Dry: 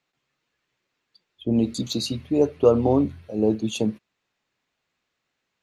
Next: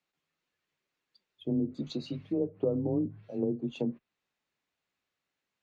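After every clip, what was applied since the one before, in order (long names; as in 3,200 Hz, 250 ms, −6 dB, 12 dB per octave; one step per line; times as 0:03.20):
treble cut that deepens with the level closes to 370 Hz, closed at −17 dBFS
frequency shifter +21 Hz
level −8 dB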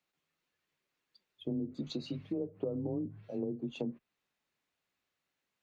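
downward compressor 3 to 1, threshold −34 dBFS, peak gain reduction 8 dB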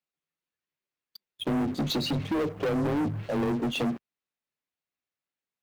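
leveller curve on the samples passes 5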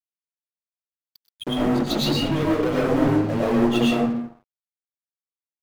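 convolution reverb RT60 0.75 s, pre-delay 70 ms, DRR −5.5 dB
dead-zone distortion −41.5 dBFS
level +2 dB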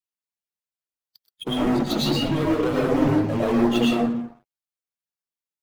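spectral magnitudes quantised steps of 15 dB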